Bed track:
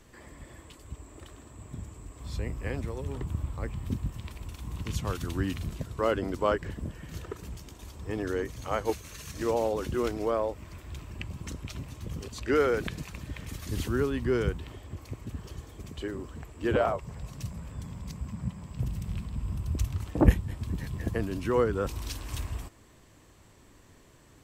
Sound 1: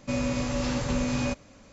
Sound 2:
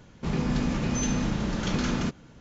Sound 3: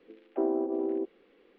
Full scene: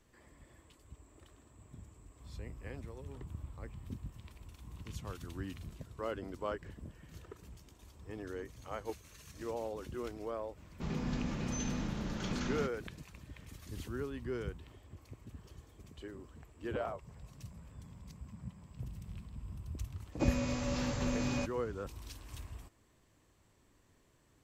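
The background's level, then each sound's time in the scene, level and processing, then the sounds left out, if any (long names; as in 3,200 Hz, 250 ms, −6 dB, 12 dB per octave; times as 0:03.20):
bed track −12 dB
0:10.57: mix in 2 −10 dB
0:20.12: mix in 1 −7 dB
not used: 3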